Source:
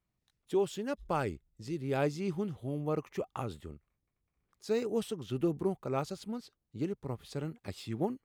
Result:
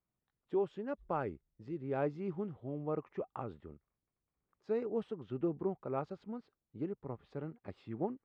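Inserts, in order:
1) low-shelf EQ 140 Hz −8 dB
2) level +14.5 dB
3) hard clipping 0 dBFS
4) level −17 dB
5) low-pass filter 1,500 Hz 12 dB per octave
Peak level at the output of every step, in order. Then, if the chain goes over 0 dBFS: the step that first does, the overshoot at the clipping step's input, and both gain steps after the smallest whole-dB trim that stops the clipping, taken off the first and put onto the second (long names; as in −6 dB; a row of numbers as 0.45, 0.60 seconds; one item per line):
−18.0, −3.5, −3.5, −20.5, −22.5 dBFS
no step passes full scale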